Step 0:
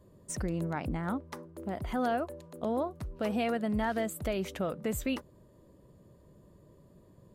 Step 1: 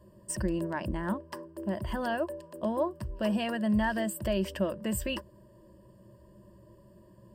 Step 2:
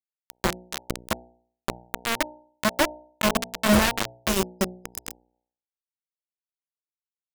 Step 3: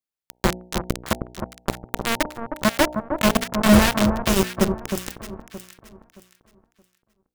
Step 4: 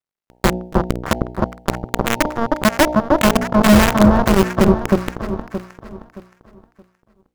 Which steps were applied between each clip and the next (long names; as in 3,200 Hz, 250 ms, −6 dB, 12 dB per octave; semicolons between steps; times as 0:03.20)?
EQ curve with evenly spaced ripples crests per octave 1.3, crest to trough 13 dB
bit reduction 4 bits; hum removal 60.72 Hz, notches 15; gain on a spectral selection 0:04.29–0:05.34, 490–5,000 Hz −6 dB; level +6 dB
low-shelf EQ 360 Hz +5.5 dB; on a send: delay that swaps between a low-pass and a high-pass 311 ms, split 1,300 Hz, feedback 53%, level −6 dB; on the sum: level +2 dB
running median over 15 samples; boost into a limiter +13.5 dB; level −1 dB